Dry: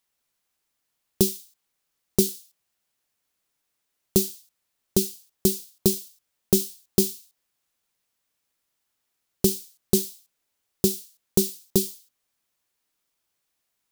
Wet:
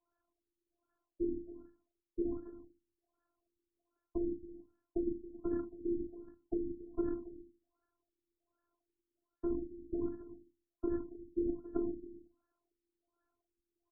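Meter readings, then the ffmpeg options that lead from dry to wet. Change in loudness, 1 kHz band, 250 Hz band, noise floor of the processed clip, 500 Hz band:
−14.5 dB, −8.5 dB, −9.0 dB, below −85 dBFS, −11.5 dB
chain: -filter_complex "[0:a]highpass=62,lowshelf=frequency=300:gain=8,bandreject=frequency=50:width_type=h:width=6,bandreject=frequency=100:width_type=h:width=6,bandreject=frequency=150:width_type=h:width=6,bandreject=frequency=200:width_type=h:width=6,bandreject=frequency=250:width_type=h:width=6,areverse,acompressor=threshold=-23dB:ratio=16,areverse,alimiter=limit=-22.5dB:level=0:latency=1:release=52,acrossover=split=390|3000[link_01][link_02][link_03];[link_02]acompressor=threshold=-44dB:ratio=6[link_04];[link_01][link_04][link_03]amix=inputs=3:normalize=0,aresample=16000,volume=28dB,asoftclip=hard,volume=-28dB,aresample=44100,afftfilt=real='hypot(re,im)*cos(2*PI*random(0))':imag='hypot(re,im)*sin(2*PI*random(1))':win_size=512:overlap=0.75,acrusher=bits=3:mode=log:mix=0:aa=0.000001,afftfilt=real='hypot(re,im)*cos(PI*b)':imag='0':win_size=512:overlap=0.75,aecho=1:1:275:0.168,afftfilt=real='re*lt(b*sr/1024,390*pow(1800/390,0.5+0.5*sin(2*PI*1.3*pts/sr)))':imag='im*lt(b*sr/1024,390*pow(1800/390,0.5+0.5*sin(2*PI*1.3*pts/sr)))':win_size=1024:overlap=0.75,volume=11.5dB"

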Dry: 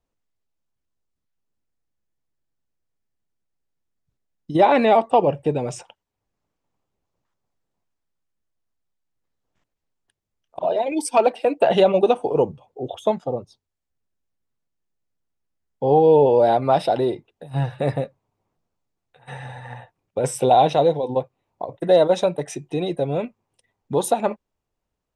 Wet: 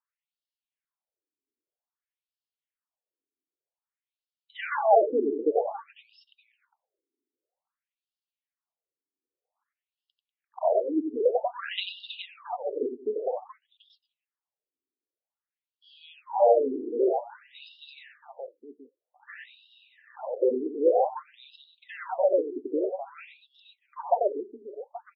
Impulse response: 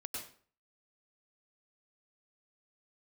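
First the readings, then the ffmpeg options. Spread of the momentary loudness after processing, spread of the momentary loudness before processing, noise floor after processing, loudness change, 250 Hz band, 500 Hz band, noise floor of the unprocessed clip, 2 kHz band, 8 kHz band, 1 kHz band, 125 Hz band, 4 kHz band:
22 LU, 18 LU, below −85 dBFS, −7.0 dB, −8.5 dB, −7.5 dB, −82 dBFS, −6.5 dB, below −40 dB, −9.0 dB, below −40 dB, −7.0 dB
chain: -af "aecho=1:1:91|193|422|828:0.501|0.141|0.355|0.178,afftfilt=real='re*between(b*sr/1024,310*pow(3900/310,0.5+0.5*sin(2*PI*0.52*pts/sr))/1.41,310*pow(3900/310,0.5+0.5*sin(2*PI*0.52*pts/sr))*1.41)':imag='im*between(b*sr/1024,310*pow(3900/310,0.5+0.5*sin(2*PI*0.52*pts/sr))/1.41,310*pow(3900/310,0.5+0.5*sin(2*PI*0.52*pts/sr))*1.41)':win_size=1024:overlap=0.75,volume=-2.5dB"

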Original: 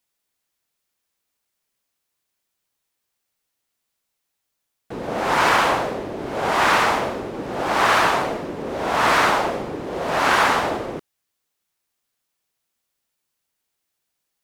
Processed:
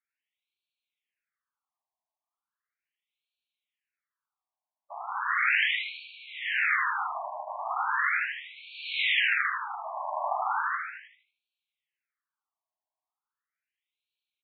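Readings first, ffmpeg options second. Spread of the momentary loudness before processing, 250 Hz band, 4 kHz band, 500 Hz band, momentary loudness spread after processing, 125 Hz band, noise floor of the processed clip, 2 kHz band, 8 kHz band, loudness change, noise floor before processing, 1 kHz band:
13 LU, below −40 dB, −6.5 dB, −20.5 dB, 16 LU, below −40 dB, below −85 dBFS, −4.5 dB, below −40 dB, −7.5 dB, −78 dBFS, −11.5 dB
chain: -filter_complex "[0:a]bandreject=frequency=1600:width=12,aeval=exprs='abs(val(0))':channel_layout=same,asplit=2[link_01][link_02];[link_02]adelay=78,lowpass=frequency=4200:poles=1,volume=-4dB,asplit=2[link_03][link_04];[link_04]adelay=78,lowpass=frequency=4200:poles=1,volume=0.49,asplit=2[link_05][link_06];[link_06]adelay=78,lowpass=frequency=4200:poles=1,volume=0.49,asplit=2[link_07][link_08];[link_08]adelay=78,lowpass=frequency=4200:poles=1,volume=0.49,asplit=2[link_09][link_10];[link_10]adelay=78,lowpass=frequency=4200:poles=1,volume=0.49,asplit=2[link_11][link_12];[link_12]adelay=78,lowpass=frequency=4200:poles=1,volume=0.49[link_13];[link_03][link_05][link_07][link_09][link_11][link_13]amix=inputs=6:normalize=0[link_14];[link_01][link_14]amix=inputs=2:normalize=0,afftfilt=real='re*between(b*sr/1024,790*pow(3200/790,0.5+0.5*sin(2*PI*0.37*pts/sr))/1.41,790*pow(3200/790,0.5+0.5*sin(2*PI*0.37*pts/sr))*1.41)':imag='im*between(b*sr/1024,790*pow(3200/790,0.5+0.5*sin(2*PI*0.37*pts/sr))/1.41,790*pow(3200/790,0.5+0.5*sin(2*PI*0.37*pts/sr))*1.41)':win_size=1024:overlap=0.75"

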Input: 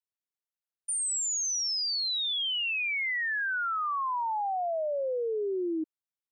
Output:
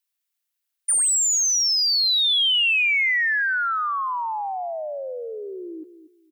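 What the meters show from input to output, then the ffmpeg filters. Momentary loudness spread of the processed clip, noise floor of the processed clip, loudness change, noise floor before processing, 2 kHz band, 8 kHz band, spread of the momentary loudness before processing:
16 LU, −80 dBFS, +10.0 dB, below −85 dBFS, +9.5 dB, +10.0 dB, 5 LU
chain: -filter_complex "[0:a]crystalizer=i=5:c=0,tiltshelf=frequency=940:gain=-5.5,asplit=2[link_01][link_02];[link_02]asoftclip=type=tanh:threshold=-17.5dB,volume=-6dB[link_03];[link_01][link_03]amix=inputs=2:normalize=0,bass=frequency=250:gain=-11,treble=frequency=4000:gain=-11,asplit=2[link_04][link_05];[link_05]adelay=235,lowpass=frequency=860:poles=1,volume=-12dB,asplit=2[link_06][link_07];[link_07]adelay=235,lowpass=frequency=860:poles=1,volume=0.29,asplit=2[link_08][link_09];[link_09]adelay=235,lowpass=frequency=860:poles=1,volume=0.29[link_10];[link_04][link_06][link_08][link_10]amix=inputs=4:normalize=0,volume=-1.5dB"

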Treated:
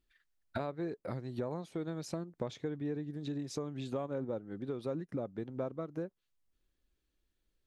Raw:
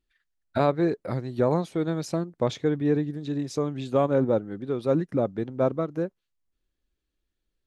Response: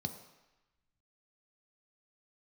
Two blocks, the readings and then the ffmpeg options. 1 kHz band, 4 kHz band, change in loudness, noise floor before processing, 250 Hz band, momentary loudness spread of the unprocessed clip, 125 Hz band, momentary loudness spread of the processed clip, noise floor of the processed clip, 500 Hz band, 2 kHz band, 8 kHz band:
−14.5 dB, −9.5 dB, −13.0 dB, −81 dBFS, −12.0 dB, 8 LU, −12.0 dB, 4 LU, −82 dBFS, −14.0 dB, −11.5 dB, −7.5 dB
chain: -af "acompressor=threshold=-37dB:ratio=4"

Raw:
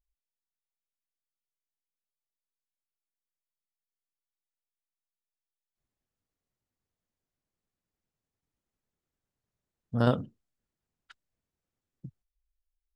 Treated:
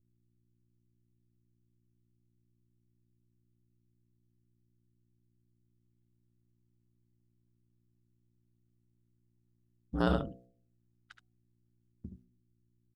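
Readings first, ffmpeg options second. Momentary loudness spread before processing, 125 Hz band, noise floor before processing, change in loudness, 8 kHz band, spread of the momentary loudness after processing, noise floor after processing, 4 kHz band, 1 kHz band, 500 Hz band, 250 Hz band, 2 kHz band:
14 LU, −6.5 dB, below −85 dBFS, −4.0 dB, can't be measured, 21 LU, −75 dBFS, −1.5 dB, −2.0 dB, −4.0 dB, −2.5 dB, 0.0 dB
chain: -filter_complex "[0:a]aecho=1:1:73:0.422,agate=range=-9dB:threshold=-58dB:ratio=16:detection=peak,aeval=exprs='val(0)+0.000316*(sin(2*PI*60*n/s)+sin(2*PI*2*60*n/s)/2+sin(2*PI*3*60*n/s)/3+sin(2*PI*4*60*n/s)/4+sin(2*PI*5*60*n/s)/5)':channel_layout=same,bandreject=frequency=570:width=12,aeval=exprs='val(0)*sin(2*PI*56*n/s)':channel_layout=same,asplit=2[link_01][link_02];[link_02]alimiter=limit=-19.5dB:level=0:latency=1,volume=-2.5dB[link_03];[link_01][link_03]amix=inputs=2:normalize=0,bandreject=frequency=61.46:width_type=h:width=4,bandreject=frequency=122.92:width_type=h:width=4,bandreject=frequency=184.38:width_type=h:width=4,bandreject=frequency=245.84:width_type=h:width=4,bandreject=frequency=307.3:width_type=h:width=4,bandreject=frequency=368.76:width_type=h:width=4,bandreject=frequency=430.22:width_type=h:width=4,bandreject=frequency=491.68:width_type=h:width=4,bandreject=frequency=553.14:width_type=h:width=4,bandreject=frequency=614.6:width_type=h:width=4,bandreject=frequency=676.06:width_type=h:width=4,bandreject=frequency=737.52:width_type=h:width=4,volume=-3dB"

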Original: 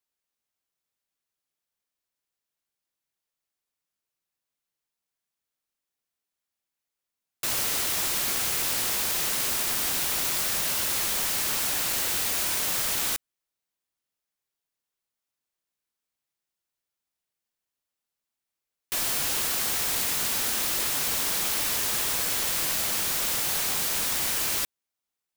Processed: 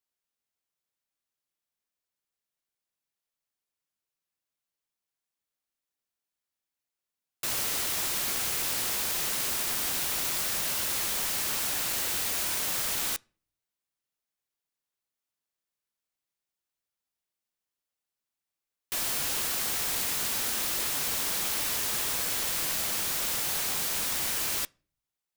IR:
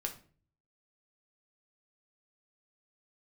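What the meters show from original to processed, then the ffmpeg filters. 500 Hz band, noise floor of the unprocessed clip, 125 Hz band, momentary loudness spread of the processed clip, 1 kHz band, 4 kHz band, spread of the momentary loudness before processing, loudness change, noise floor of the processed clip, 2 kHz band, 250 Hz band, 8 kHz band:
−3.0 dB, below −85 dBFS, −3.0 dB, 1 LU, −3.0 dB, −3.0 dB, 1 LU, −3.0 dB, below −85 dBFS, −3.0 dB, −3.0 dB, −3.0 dB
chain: -filter_complex "[0:a]asplit=2[link_01][link_02];[1:a]atrim=start_sample=2205,lowpass=6900,adelay=14[link_03];[link_02][link_03]afir=irnorm=-1:irlink=0,volume=-20.5dB[link_04];[link_01][link_04]amix=inputs=2:normalize=0,volume=-3dB"

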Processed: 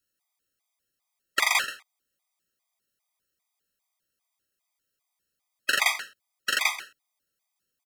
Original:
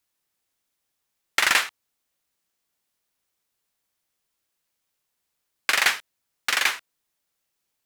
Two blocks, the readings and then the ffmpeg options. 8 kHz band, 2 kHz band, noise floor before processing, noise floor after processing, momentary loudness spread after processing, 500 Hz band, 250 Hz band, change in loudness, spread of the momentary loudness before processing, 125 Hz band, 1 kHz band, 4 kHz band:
−3.0 dB, −3.5 dB, −79 dBFS, −83 dBFS, 14 LU, −3.5 dB, −4.5 dB, −3.5 dB, 13 LU, can't be measured, −2.5 dB, −3.0 dB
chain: -af "aecho=1:1:132:0.188,afftfilt=real='re*gt(sin(2*PI*2.5*pts/sr)*(1-2*mod(floor(b*sr/1024/640),2)),0)':imag='im*gt(sin(2*PI*2.5*pts/sr)*(1-2*mod(floor(b*sr/1024/640),2)),0)':win_size=1024:overlap=0.75"

